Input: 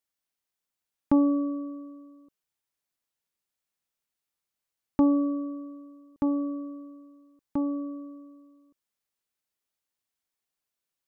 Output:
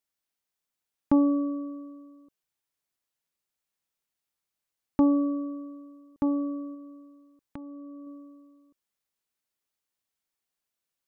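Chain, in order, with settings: 6.74–8.07 compressor 8:1, threshold -41 dBFS, peak gain reduction 15.5 dB

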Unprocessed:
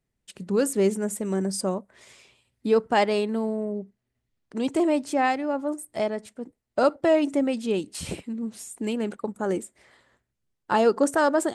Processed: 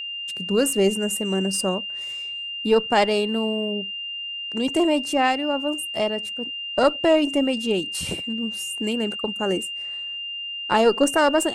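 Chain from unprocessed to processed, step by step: high shelf 8400 Hz +7 dB; added harmonics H 2 -17 dB, 6 -39 dB, 8 -44 dB, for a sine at -9 dBFS; whine 2800 Hz -31 dBFS; gain +2 dB

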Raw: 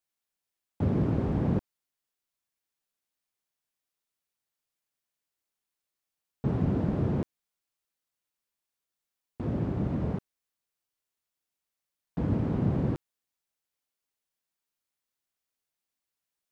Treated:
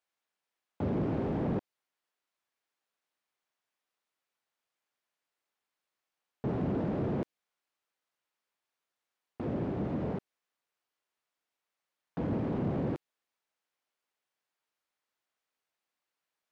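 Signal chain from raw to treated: dynamic EQ 1200 Hz, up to -6 dB, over -52 dBFS, Q 0.98; overdrive pedal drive 21 dB, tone 1500 Hz, clips at -14.5 dBFS; gain -6.5 dB

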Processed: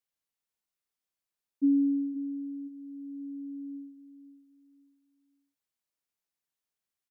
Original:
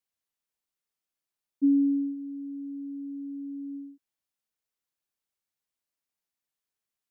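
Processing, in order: feedback echo 0.526 s, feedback 29%, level -12 dB; gain -2 dB

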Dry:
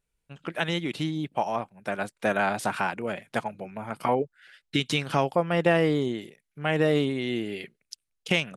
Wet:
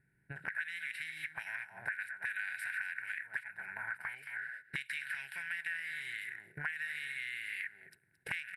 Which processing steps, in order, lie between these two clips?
per-bin compression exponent 0.6; small resonant body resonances 380/1500/3900 Hz, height 8 dB, ringing for 45 ms; on a send: echo 0.222 s -12 dB; on the sum: gate -41 dBFS, range -8 dB; high shelf 9800 Hz +10.5 dB; fixed phaser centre 2800 Hz, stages 4; auto-wah 280–2900 Hz, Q 2, up, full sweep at -21 dBFS; AGC gain up to 4.5 dB; EQ curve 120 Hz 0 dB, 260 Hz -24 dB, 500 Hz -30 dB, 1700 Hz +11 dB, 3200 Hz -21 dB, 6100 Hz +3 dB, 10000 Hz +9 dB; compressor 4:1, threshold -55 dBFS, peak gain reduction 27.5 dB; gain +13 dB

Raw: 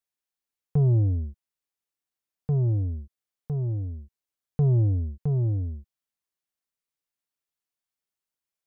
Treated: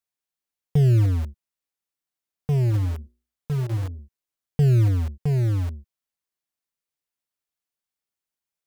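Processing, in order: 2.7–3.99 notches 60/120/180/240/300/360/420/480/540/600 Hz; in parallel at -7 dB: bit-crush 5-bit

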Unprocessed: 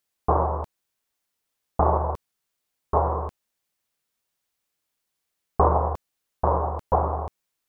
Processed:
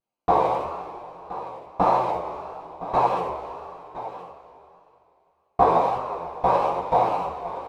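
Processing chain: Wiener smoothing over 25 samples; bell 80 Hz -14 dB 0.51 oct; two-slope reverb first 0.22 s, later 2.8 s, from -19 dB, DRR -6.5 dB; in parallel at -2 dB: compressor, threshold -23 dBFS, peak gain reduction 14 dB; on the sum: low shelf 330 Hz -10 dB; on a send: echo 1.017 s -14 dB; on the sum: flange 1 Hz, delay 7.7 ms, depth 8.3 ms, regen +48%; vibrato 1.7 Hz 63 cents

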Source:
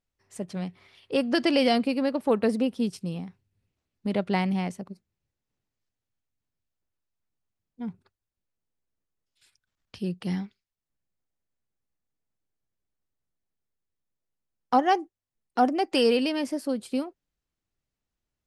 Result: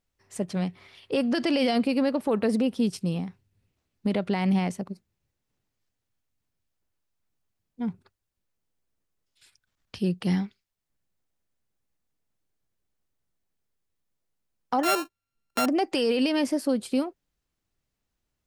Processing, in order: 14.83–15.66 sample sorter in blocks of 32 samples; limiter -20.5 dBFS, peak gain reduction 10.5 dB; gain +4.5 dB

